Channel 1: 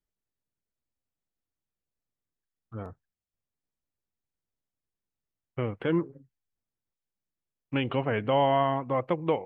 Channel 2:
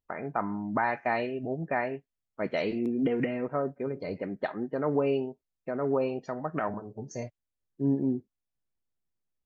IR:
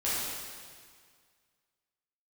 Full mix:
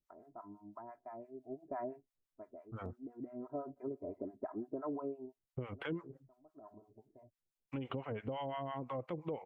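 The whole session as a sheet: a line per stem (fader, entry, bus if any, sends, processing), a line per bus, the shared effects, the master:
+1.0 dB, 0.00 s, no send, notch 1700 Hz, Q 20; limiter -22 dBFS, peak gain reduction 9 dB
1.4 s -16.5 dB -> 1.84 s -4 dB -> 5.88 s -4 dB -> 6.4 s -14 dB, 0.00 s, no send, LPF 1100 Hz 24 dB/oct; comb 3 ms, depth 82%; auto duck -22 dB, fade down 0.60 s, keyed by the first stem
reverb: off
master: harmonic tremolo 5.9 Hz, depth 100%, crossover 710 Hz; compressor 4:1, threshold -37 dBFS, peak gain reduction 9 dB

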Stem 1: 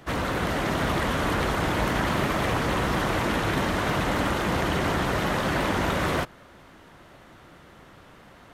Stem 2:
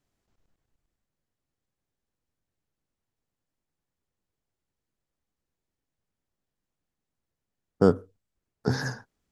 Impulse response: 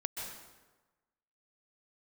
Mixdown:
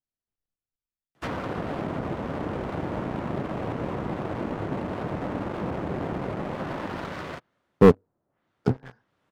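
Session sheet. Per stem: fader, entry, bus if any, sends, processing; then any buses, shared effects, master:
-11.0 dB, 1.15 s, no send, HPF 91 Hz 12 dB/oct; soft clip -18 dBFS, distortion -20 dB; auto duck -8 dB, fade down 1.45 s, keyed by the second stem
+2.0 dB, 0.00 s, no send, upward expander 2.5:1, over -27 dBFS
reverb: off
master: treble ducked by the level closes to 730 Hz, closed at -34.5 dBFS; sample leveller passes 3

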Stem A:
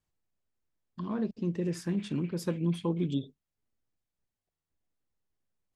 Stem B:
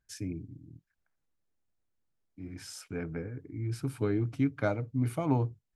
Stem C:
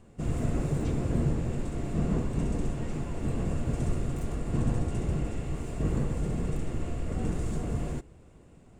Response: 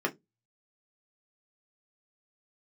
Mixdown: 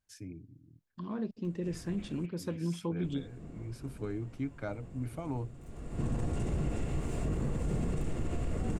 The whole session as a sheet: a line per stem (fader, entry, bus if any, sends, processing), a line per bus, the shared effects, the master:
-4.0 dB, 0.00 s, no send, dry
-8.0 dB, 0.00 s, no send, dry
+0.5 dB, 1.45 s, muted 2.26–3.04, no send, upward compressor, threshold -30 dBFS; auto duck -20 dB, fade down 1.70 s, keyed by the second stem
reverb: off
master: limiter -24.5 dBFS, peak gain reduction 8.5 dB

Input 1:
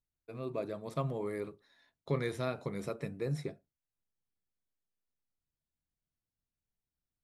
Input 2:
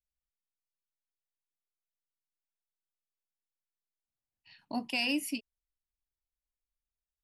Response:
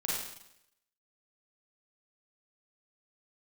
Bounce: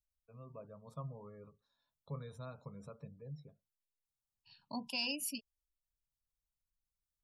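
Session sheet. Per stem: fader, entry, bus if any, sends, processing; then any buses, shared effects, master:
-6.0 dB, 0.00 s, no send, high shelf 2500 Hz -4 dB; auto duck -14 dB, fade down 1.45 s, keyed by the second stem
+1.0 dB, 0.00 s, no send, dry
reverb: off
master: spectral gate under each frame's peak -30 dB strong; bell 720 Hz -10.5 dB 0.49 oct; fixed phaser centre 830 Hz, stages 4

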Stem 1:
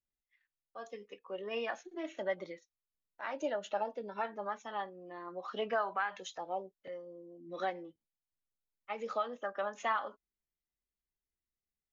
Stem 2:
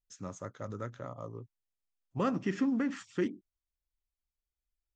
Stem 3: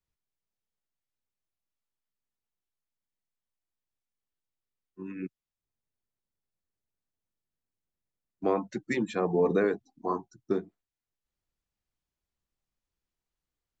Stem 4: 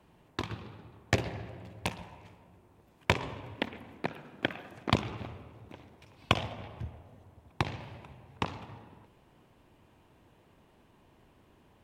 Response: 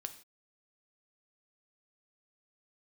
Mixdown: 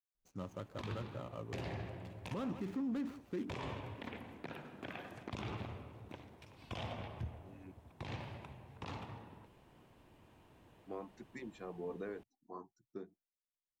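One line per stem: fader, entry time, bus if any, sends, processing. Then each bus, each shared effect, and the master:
off
-2.0 dB, 0.15 s, no send, echo send -19 dB, median filter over 25 samples
-18.5 dB, 2.45 s, no send, no echo send, dry
-1.5 dB, 0.40 s, no send, no echo send, dry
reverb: off
echo: echo 0.157 s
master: limiter -32.5 dBFS, peak gain reduction 23.5 dB

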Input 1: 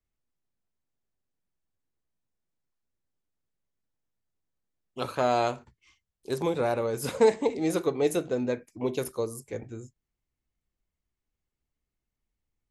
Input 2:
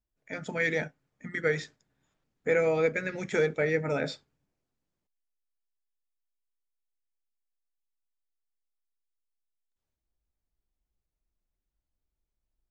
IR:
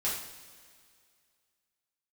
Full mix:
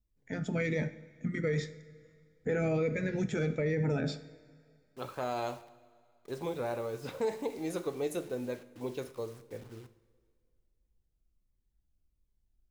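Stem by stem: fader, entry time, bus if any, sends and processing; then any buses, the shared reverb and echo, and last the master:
-9.5 dB, 0.00 s, send -15 dB, low-pass opened by the level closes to 910 Hz, open at -22.5 dBFS; requantised 8-bit, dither none
-3.0 dB, 0.00 s, send -17 dB, low shelf 360 Hz +12 dB; cascading phaser falling 1.4 Hz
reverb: on, pre-delay 3 ms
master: limiter -23 dBFS, peak gain reduction 9.5 dB

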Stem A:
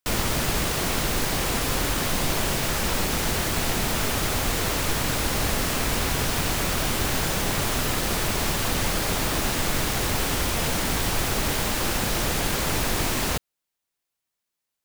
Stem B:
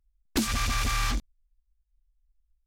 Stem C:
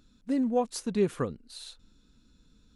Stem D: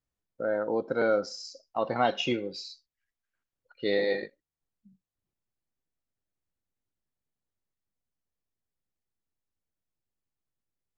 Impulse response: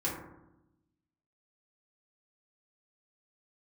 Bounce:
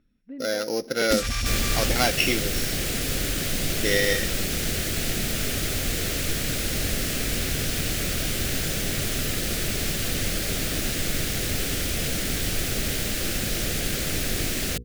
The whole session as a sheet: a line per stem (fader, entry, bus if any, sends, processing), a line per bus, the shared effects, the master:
-0.5 dB, 1.40 s, no send, bell 930 Hz -10 dB 0.68 oct; notches 60/120/180/240/300/360/420/480 Hz
+1.0 dB, 0.75 s, no send, dry
-5.0 dB, 0.00 s, no send, LPF 2600 Hz 24 dB/oct; auto duck -19 dB, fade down 1.20 s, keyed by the fourth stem
+1.5 dB, 0.00 s, no send, sample sorter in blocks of 8 samples; bell 2200 Hz +14 dB 1.3 oct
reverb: off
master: bell 1000 Hz -8.5 dB 0.76 oct

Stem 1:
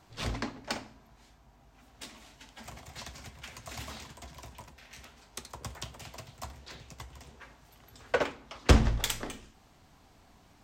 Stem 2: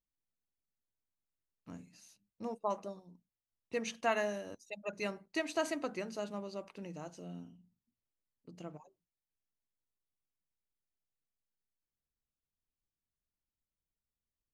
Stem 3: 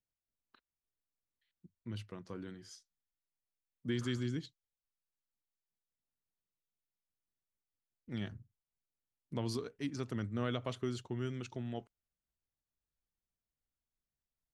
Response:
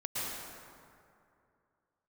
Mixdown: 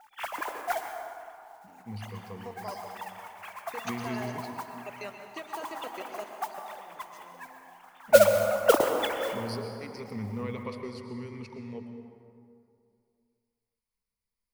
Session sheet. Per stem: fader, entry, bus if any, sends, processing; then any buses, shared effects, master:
-10.0 dB, 0.00 s, send -7.5 dB, sine-wave speech; bell 750 Hz +12.5 dB 2.7 oct; modulation noise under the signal 13 dB
-1.0 dB, 0.00 s, send -7 dB, HPF 320 Hz 12 dB/oct; level quantiser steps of 20 dB
-5.5 dB, 0.00 s, send -6.5 dB, ripple EQ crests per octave 0.89, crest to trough 17 dB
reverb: on, RT60 2.5 s, pre-delay 0.103 s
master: dry

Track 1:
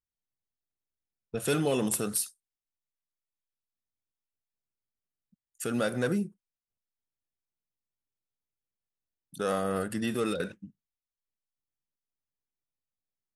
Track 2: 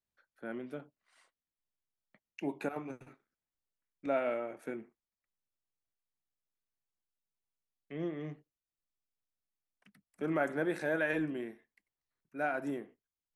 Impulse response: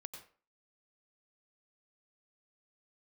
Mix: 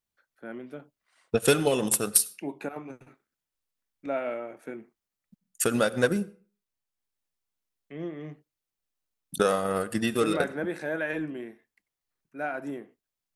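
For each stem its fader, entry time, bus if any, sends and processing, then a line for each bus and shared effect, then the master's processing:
+1.5 dB, 0.00 s, send -8.5 dB, low shelf 220 Hz -5 dB; transient shaper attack +9 dB, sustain -7 dB
+1.5 dB, 0.00 s, no send, dry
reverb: on, RT60 0.40 s, pre-delay 86 ms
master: dry

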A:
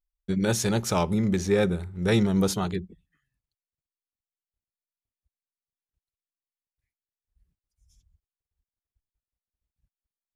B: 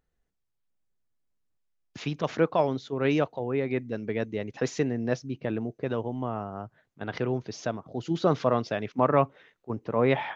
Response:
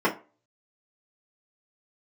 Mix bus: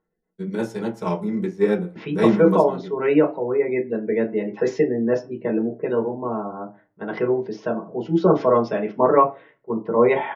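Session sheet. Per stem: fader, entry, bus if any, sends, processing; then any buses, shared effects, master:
-7.0 dB, 0.10 s, send -5 dB, upward expander 2.5:1, over -31 dBFS
-5.0 dB, 0.00 s, send -6.5 dB, spectral gate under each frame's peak -30 dB strong; low-pass opened by the level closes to 2400 Hz, open at -21.5 dBFS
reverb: on, RT60 0.35 s, pre-delay 3 ms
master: dry

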